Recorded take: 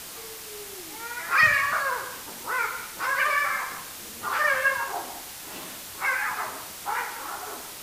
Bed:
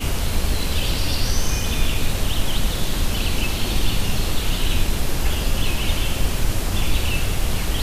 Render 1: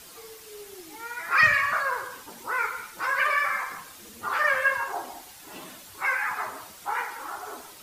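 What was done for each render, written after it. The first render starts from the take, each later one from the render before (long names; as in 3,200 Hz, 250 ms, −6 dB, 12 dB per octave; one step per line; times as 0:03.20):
broadband denoise 9 dB, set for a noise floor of −40 dBFS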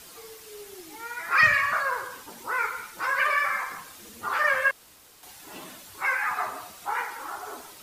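0:04.71–0:05.23: fill with room tone
0:06.23–0:06.86: hollow resonant body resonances 720/1,200/2,600/3,900 Hz, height 8 dB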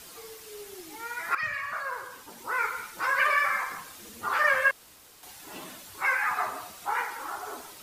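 0:01.35–0:02.80: fade in, from −15.5 dB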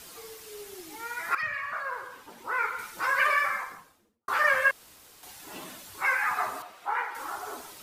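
0:01.42–0:02.79: bass and treble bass −3 dB, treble −8 dB
0:03.29–0:04.28: fade out and dull
0:06.62–0:07.15: bass and treble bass −15 dB, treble −14 dB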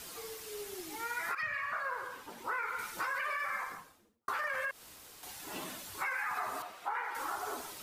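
brickwall limiter −21.5 dBFS, peak gain reduction 10 dB
downward compressor 5 to 1, threshold −33 dBFS, peak gain reduction 7 dB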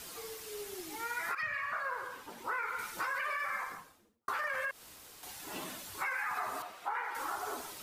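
no processing that can be heard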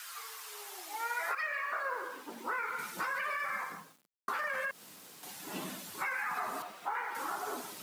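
bit-depth reduction 10 bits, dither none
high-pass filter sweep 1,400 Hz → 180 Hz, 0:00.04–0:02.78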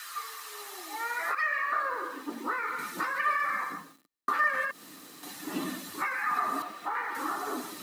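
in parallel at −11.5 dB: soft clipping −37 dBFS, distortion −10 dB
on the sum: hollow resonant body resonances 290/1,200/1,800/4,000 Hz, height 12 dB, ringing for 40 ms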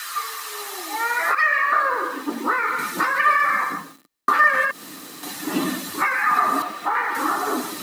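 level +10.5 dB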